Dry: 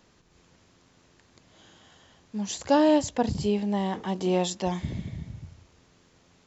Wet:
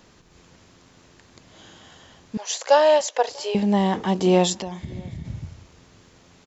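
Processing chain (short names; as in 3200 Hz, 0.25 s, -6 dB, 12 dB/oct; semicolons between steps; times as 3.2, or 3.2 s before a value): 2.37–3.55 elliptic band-pass 500–6800 Hz, stop band 40 dB; 4.55–5.25 compressor 5:1, threshold -38 dBFS, peak gain reduction 14 dB; outdoor echo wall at 110 m, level -27 dB; gain +7.5 dB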